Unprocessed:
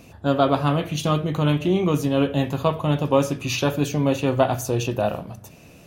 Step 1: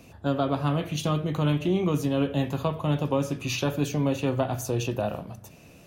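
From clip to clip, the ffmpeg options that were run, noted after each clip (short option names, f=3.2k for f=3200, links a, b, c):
-filter_complex "[0:a]acrossover=split=300[a][b];[b]acompressor=threshold=-23dB:ratio=2.5[c];[a][c]amix=inputs=2:normalize=0,volume=-3.5dB"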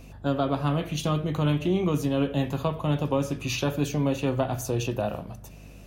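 -af "aeval=exprs='val(0)+0.00501*(sin(2*PI*50*n/s)+sin(2*PI*2*50*n/s)/2+sin(2*PI*3*50*n/s)/3+sin(2*PI*4*50*n/s)/4+sin(2*PI*5*50*n/s)/5)':c=same"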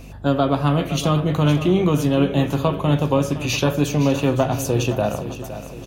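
-af "aecho=1:1:514|1028|1542|2056|2570:0.237|0.116|0.0569|0.0279|0.0137,volume=7dB"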